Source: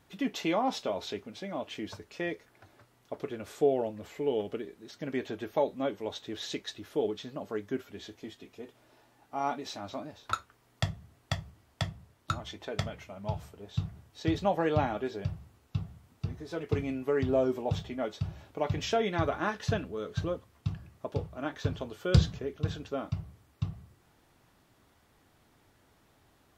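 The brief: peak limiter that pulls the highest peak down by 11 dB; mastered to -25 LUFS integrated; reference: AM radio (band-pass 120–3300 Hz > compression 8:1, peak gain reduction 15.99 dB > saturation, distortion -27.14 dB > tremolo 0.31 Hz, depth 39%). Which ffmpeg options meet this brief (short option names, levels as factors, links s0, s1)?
-af "alimiter=limit=0.075:level=0:latency=1,highpass=120,lowpass=3300,acompressor=threshold=0.00708:ratio=8,asoftclip=threshold=0.0316,tremolo=f=0.31:d=0.39,volume=18.8"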